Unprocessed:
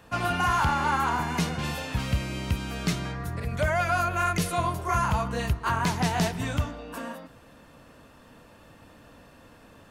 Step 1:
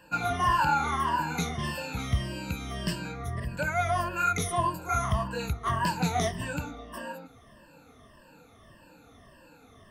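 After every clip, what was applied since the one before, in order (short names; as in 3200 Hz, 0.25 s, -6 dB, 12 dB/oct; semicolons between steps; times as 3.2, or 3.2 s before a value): moving spectral ripple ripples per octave 1.3, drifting -1.7 Hz, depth 20 dB; gain -6.5 dB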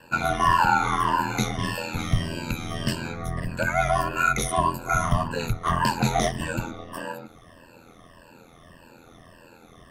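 ring modulator 42 Hz; gain +7.5 dB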